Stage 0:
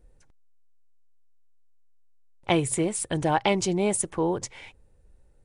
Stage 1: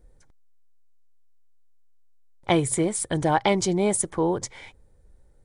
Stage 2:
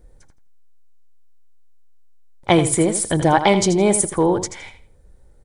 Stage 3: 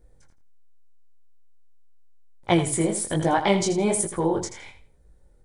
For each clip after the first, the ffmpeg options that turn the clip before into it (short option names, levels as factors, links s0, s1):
-af "bandreject=f=2700:w=5.2,volume=1.26"
-af "aecho=1:1:82|164|246:0.299|0.0627|0.0132,volume=2"
-af "flanger=delay=17:depth=7.8:speed=1.2,volume=0.708"